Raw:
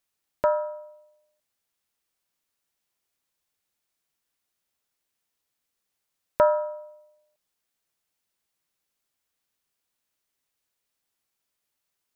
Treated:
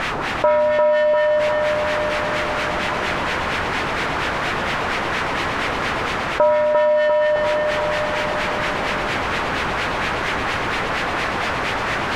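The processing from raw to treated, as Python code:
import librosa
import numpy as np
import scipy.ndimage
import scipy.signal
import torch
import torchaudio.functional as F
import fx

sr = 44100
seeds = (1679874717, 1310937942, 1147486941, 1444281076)

y = x + 0.5 * 10.0 ** (-22.0 / 20.0) * np.sign(x)
y = fx.rider(y, sr, range_db=10, speed_s=0.5)
y = fx.filter_lfo_lowpass(y, sr, shape='sine', hz=4.3, low_hz=960.0, high_hz=2200.0, q=1.3)
y = fx.echo_feedback(y, sr, ms=348, feedback_pct=58, wet_db=-5.5)
y = fx.env_flatten(y, sr, amount_pct=50)
y = F.gain(torch.from_numpy(y), 3.5).numpy()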